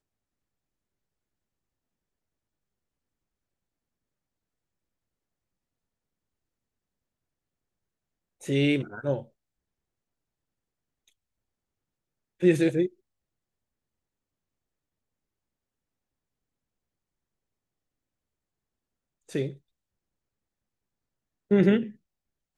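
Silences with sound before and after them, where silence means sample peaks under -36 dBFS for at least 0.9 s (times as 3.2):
9.22–12.42
12.87–19.32
19.51–21.51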